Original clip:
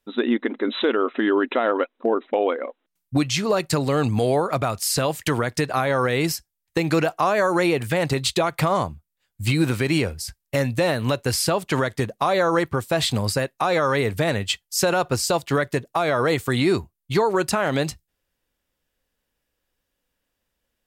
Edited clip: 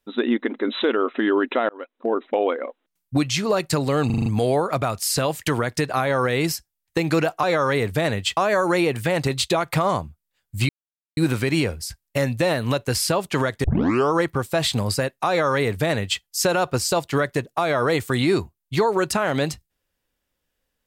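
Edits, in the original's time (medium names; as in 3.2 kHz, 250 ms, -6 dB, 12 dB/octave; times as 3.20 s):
1.69–2.19 s: fade in
4.06 s: stutter 0.04 s, 6 plays
9.55 s: insert silence 0.48 s
12.02 s: tape start 0.50 s
13.66–14.60 s: copy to 7.23 s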